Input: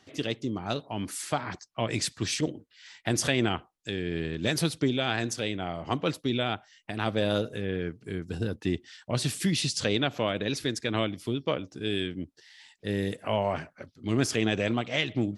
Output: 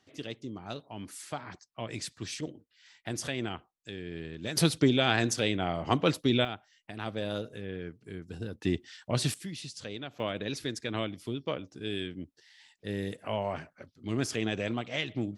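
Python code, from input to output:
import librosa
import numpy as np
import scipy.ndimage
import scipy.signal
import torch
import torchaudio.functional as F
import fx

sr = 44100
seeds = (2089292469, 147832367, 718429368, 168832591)

y = fx.gain(x, sr, db=fx.steps((0.0, -8.5), (4.57, 2.5), (6.45, -7.5), (8.62, -0.5), (9.34, -13.5), (10.2, -5.0)))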